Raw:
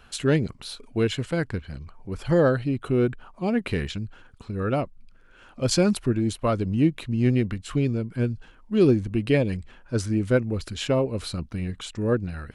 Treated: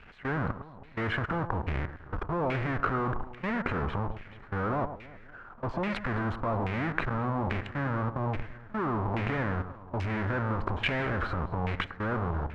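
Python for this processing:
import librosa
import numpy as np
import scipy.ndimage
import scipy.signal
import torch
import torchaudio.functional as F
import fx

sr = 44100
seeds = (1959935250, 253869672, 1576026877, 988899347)

p1 = fx.halfwave_hold(x, sr)
p2 = fx.rider(p1, sr, range_db=5, speed_s=0.5)
p3 = p1 + F.gain(torch.from_numpy(p2), 2.0).numpy()
p4 = fx.transient(p3, sr, attack_db=-10, sustain_db=8)
p5 = fx.level_steps(p4, sr, step_db=22)
p6 = p5 + fx.echo_alternate(p5, sr, ms=107, hz=1800.0, feedback_pct=64, wet_db=-11, dry=0)
p7 = fx.filter_lfo_lowpass(p6, sr, shape='saw_down', hz=1.2, low_hz=860.0, high_hz=2400.0, q=3.3)
y = F.gain(torch.from_numpy(p7), -9.0).numpy()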